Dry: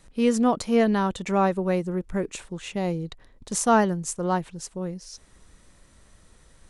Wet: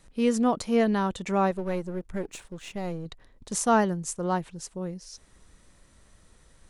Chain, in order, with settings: 1.51–3.06 half-wave gain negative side -7 dB; gain -2.5 dB

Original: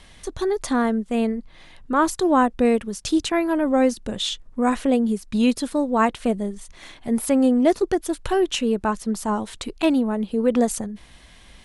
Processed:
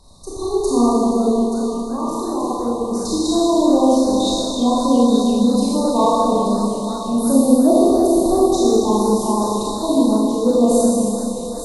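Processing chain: 1.92–2.9 level quantiser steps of 13 dB; FFT band-reject 1200–3600 Hz; on a send: thinning echo 0.88 s, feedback 67%, high-pass 1200 Hz, level -8 dB; on the sum: Schroeder reverb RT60 2.8 s, combs from 26 ms, DRR -8.5 dB; warbling echo 0.343 s, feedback 62%, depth 205 cents, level -21 dB; gain -2.5 dB

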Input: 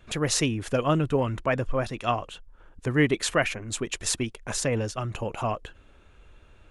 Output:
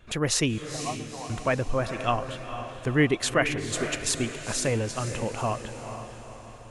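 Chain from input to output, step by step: 0.58–1.3 vocal tract filter a; on a send: diffused feedback echo 0.473 s, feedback 49%, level -9 dB

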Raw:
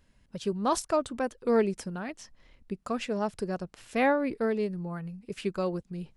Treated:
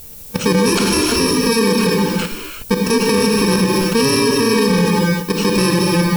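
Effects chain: FFT order left unsorted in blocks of 64 samples; LPF 6100 Hz 12 dB/oct; bell 450 Hz +6.5 dB 0.38 oct; level quantiser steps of 18 dB; added noise violet -66 dBFS; non-linear reverb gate 0.39 s flat, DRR 1.5 dB; maximiser +34 dB; gain -5.5 dB

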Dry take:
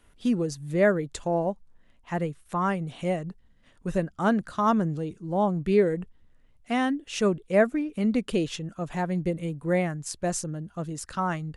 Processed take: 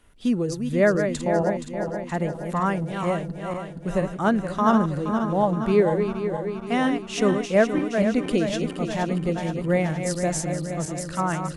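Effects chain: regenerating reverse delay 0.236 s, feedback 75%, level -7 dB; gain +2 dB

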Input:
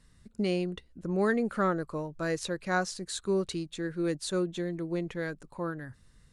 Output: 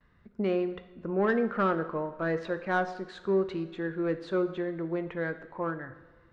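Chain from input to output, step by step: gate with hold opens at -55 dBFS; LPF 2200 Hz 12 dB/oct; overdrive pedal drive 12 dB, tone 1700 Hz, clips at -16 dBFS; on a send: reverb, pre-delay 3 ms, DRR 9 dB

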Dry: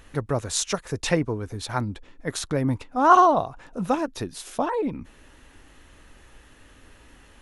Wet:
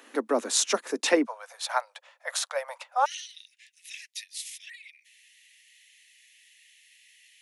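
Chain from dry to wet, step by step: steep high-pass 220 Hz 96 dB/oct, from 1.25 s 540 Hz, from 3.04 s 1900 Hz; gain +1.5 dB

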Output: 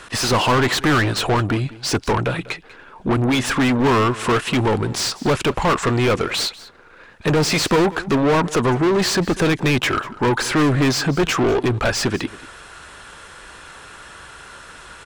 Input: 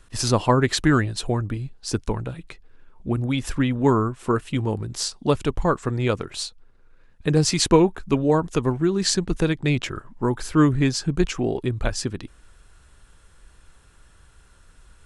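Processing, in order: overdrive pedal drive 35 dB, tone 2900 Hz, clips at -3.5 dBFS; echo 0.193 s -19 dB; gain -5.5 dB

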